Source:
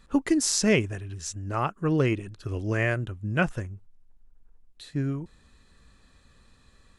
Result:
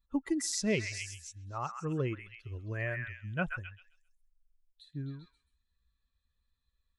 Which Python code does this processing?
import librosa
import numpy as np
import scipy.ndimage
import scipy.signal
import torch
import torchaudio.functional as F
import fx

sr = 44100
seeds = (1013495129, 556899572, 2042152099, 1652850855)

p1 = fx.bin_expand(x, sr, power=1.5)
p2 = p1 + fx.echo_stepped(p1, sr, ms=132, hz=1700.0, octaves=0.7, feedback_pct=70, wet_db=-2.0, dry=0)
y = p2 * 10.0 ** (-7.5 / 20.0)